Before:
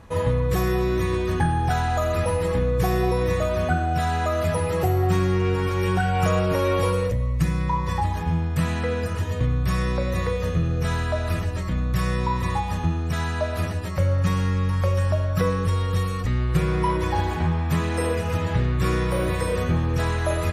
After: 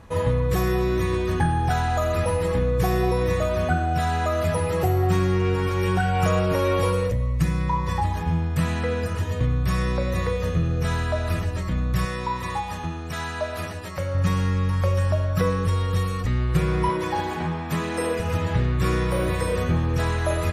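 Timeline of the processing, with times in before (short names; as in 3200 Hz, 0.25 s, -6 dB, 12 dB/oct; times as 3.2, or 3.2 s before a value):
12.05–14.15 low shelf 270 Hz -9.5 dB
16.89–18.2 HPF 160 Hz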